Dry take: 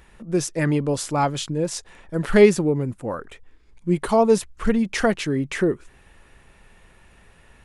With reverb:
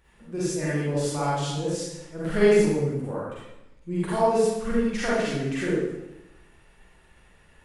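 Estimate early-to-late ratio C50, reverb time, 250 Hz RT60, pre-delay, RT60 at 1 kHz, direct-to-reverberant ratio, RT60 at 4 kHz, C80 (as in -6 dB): -4.5 dB, 0.95 s, 1.1 s, 39 ms, 0.90 s, -9.0 dB, 0.80 s, 0.5 dB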